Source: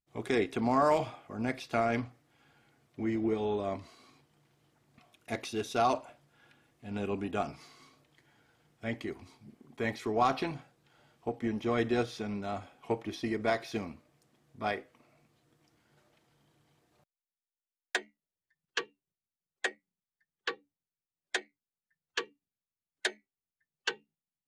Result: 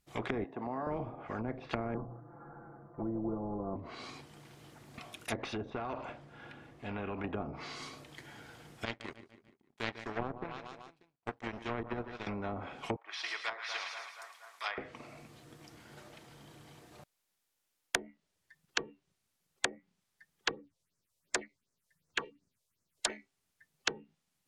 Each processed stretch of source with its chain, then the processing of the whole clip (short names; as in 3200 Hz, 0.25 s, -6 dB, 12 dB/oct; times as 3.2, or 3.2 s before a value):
0.44–0.87 HPF 400 Hz + comb 1.1 ms, depth 57%
1.94–3.76 steep low-pass 1400 Hz 48 dB/oct + notches 60/120/180 Hz + comb 5.9 ms, depth 82%
5.7–7.24 LPF 1600 Hz 6 dB/oct + compressor 20:1, threshold -35 dBFS
8.85–12.27 power-law curve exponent 2 + feedback echo 0.147 s, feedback 51%, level -19 dB
12.96–14.78 HPF 1100 Hz 24 dB/oct + split-band echo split 1400 Hz, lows 0.237 s, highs 0.109 s, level -11.5 dB
20.51–23.1 notch 780 Hz, Q 5.1 + phaser stages 4, 2.7 Hz, lowest notch 220–3300 Hz
whole clip: treble ducked by the level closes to 390 Hz, closed at -31 dBFS; spectral compressor 2:1; gain +8.5 dB